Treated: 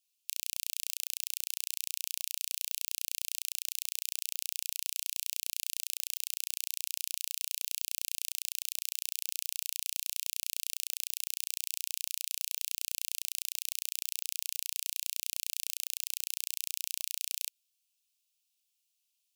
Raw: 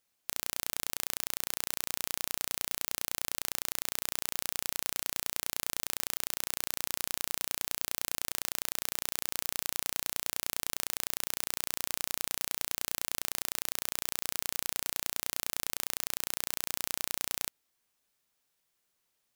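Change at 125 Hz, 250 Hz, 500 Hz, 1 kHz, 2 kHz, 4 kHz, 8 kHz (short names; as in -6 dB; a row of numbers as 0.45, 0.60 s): under -40 dB, under -40 dB, under -40 dB, under -40 dB, -7.0 dB, -0.5 dB, -0.5 dB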